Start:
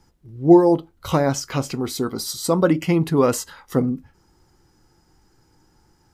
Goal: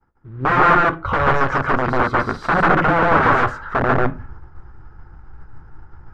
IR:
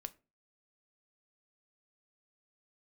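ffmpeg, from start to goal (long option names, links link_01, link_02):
-filter_complex "[0:a]agate=range=-33dB:threshold=-49dB:ratio=3:detection=peak,asubboost=boost=5:cutoff=120,areverse,acompressor=mode=upward:threshold=-34dB:ratio=2.5,areverse,acrusher=bits=6:mode=log:mix=0:aa=0.000001,alimiter=limit=-11dB:level=0:latency=1:release=202,aeval=exprs='(mod(7.94*val(0)+1,2)-1)/7.94':channel_layout=same,lowpass=frequency=1400:width_type=q:width=2.8,asplit=2[link_01][link_02];[1:a]atrim=start_sample=2205,adelay=143[link_03];[link_02][link_03]afir=irnorm=-1:irlink=0,volume=4.5dB[link_04];[link_01][link_04]amix=inputs=2:normalize=0,volume=4dB"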